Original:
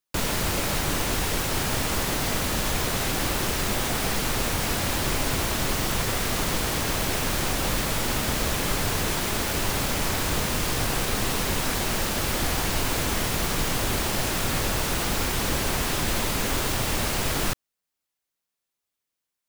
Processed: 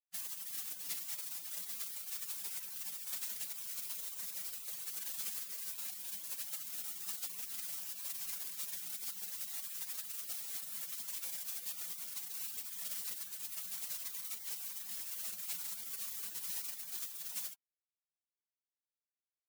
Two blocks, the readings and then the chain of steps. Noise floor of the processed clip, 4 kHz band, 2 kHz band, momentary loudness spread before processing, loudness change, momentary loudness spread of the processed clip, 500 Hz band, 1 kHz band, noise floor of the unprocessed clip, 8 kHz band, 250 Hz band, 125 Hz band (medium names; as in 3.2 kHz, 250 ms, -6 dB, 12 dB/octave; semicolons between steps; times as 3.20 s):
under -85 dBFS, -20.0 dB, -26.0 dB, 0 LU, -14.5 dB, 2 LU, -37.5 dB, -32.0 dB, -85 dBFS, -13.5 dB, -38.5 dB, under -40 dB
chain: brick-wall FIR high-pass 210 Hz; spectral gate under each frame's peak -20 dB weak; trim -2.5 dB